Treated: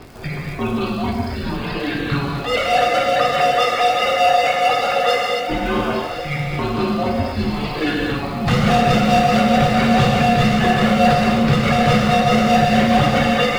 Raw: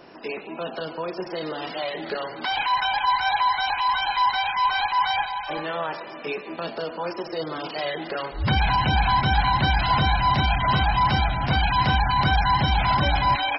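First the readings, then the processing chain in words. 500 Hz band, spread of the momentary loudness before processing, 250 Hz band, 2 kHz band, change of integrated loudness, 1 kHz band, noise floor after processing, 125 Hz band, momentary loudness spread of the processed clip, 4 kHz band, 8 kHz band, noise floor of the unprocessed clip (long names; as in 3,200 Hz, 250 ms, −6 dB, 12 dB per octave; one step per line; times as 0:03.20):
+13.0 dB, 11 LU, +14.5 dB, +4.0 dB, +6.0 dB, +4.0 dB, −26 dBFS, +5.0 dB, 9 LU, +3.5 dB, can't be measured, −38 dBFS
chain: reverb reduction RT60 1.9 s
high-shelf EQ 3,900 Hz −5.5 dB
gain into a clipping stage and back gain 23.5 dB
amplitude tremolo 4.7 Hz, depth 65%
frequency shifter −280 Hz
surface crackle 130 per second −41 dBFS
on a send: feedback delay with all-pass diffusion 1,135 ms, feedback 44%, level −12 dB
on the sum: reverb whose tail is shaped and stops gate 300 ms flat, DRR −3 dB
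level +9 dB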